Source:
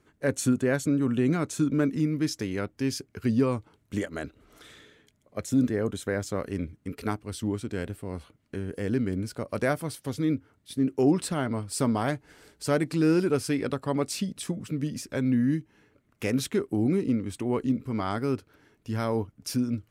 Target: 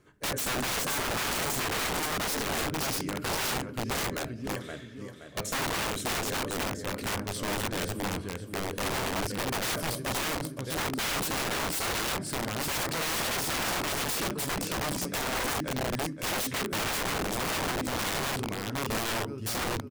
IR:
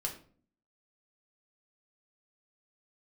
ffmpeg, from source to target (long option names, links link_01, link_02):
-filter_complex "[0:a]aecho=1:1:522|1044|1566|2088|2610:0.398|0.159|0.0637|0.0255|0.0102,asplit=2[link_01][link_02];[1:a]atrim=start_sample=2205[link_03];[link_02][link_03]afir=irnorm=-1:irlink=0,volume=-3.5dB[link_04];[link_01][link_04]amix=inputs=2:normalize=0,aeval=exprs='(mod(15*val(0)+1,2)-1)/15':channel_layout=same,volume=-2dB"